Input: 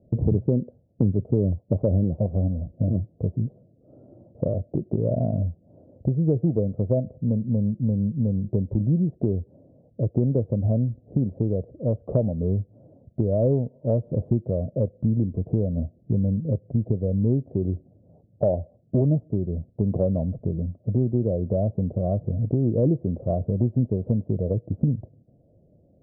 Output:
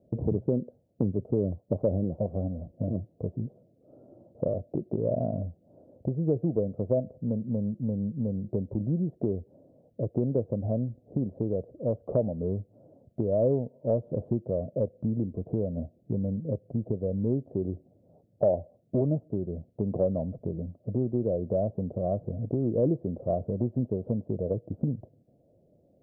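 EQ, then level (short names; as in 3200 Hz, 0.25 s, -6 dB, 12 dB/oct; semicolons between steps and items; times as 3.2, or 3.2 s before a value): low shelf 190 Hz -12 dB; 0.0 dB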